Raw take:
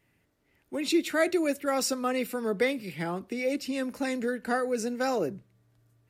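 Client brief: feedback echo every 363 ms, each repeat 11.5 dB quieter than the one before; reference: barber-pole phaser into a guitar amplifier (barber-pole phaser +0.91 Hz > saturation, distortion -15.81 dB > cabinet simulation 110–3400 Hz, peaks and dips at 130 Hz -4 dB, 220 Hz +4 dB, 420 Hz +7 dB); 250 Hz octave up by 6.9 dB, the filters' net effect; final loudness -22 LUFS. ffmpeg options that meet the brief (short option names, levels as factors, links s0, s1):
-filter_complex "[0:a]equalizer=f=250:t=o:g=6,aecho=1:1:363|726|1089:0.266|0.0718|0.0194,asplit=2[s0][s1];[s1]afreqshift=0.91[s2];[s0][s2]amix=inputs=2:normalize=1,asoftclip=threshold=0.106,highpass=110,equalizer=f=130:t=q:w=4:g=-4,equalizer=f=220:t=q:w=4:g=4,equalizer=f=420:t=q:w=4:g=7,lowpass=f=3400:w=0.5412,lowpass=f=3400:w=1.3066,volume=2.24"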